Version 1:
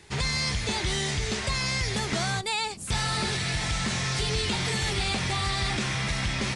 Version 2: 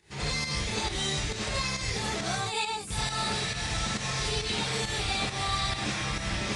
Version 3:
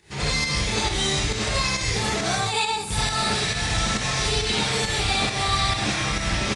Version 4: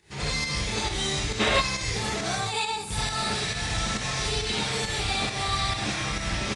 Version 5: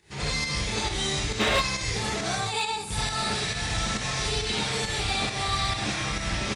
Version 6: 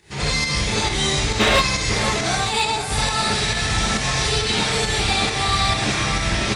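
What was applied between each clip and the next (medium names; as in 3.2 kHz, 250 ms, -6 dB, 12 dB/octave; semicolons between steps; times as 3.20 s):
gated-style reverb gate 120 ms rising, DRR -7 dB; volume shaper 136 bpm, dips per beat 1, -8 dB, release 153 ms; trim -9 dB
feedback delay 64 ms, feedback 53%, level -11 dB; trim +6.5 dB
time-frequency box 1.40–1.61 s, 210–4000 Hz +9 dB; trim -4.5 dB
hard clipper -17 dBFS, distortion -24 dB
echo whose repeats swap between lows and highs 502 ms, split 2.5 kHz, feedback 69%, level -8.5 dB; trim +7 dB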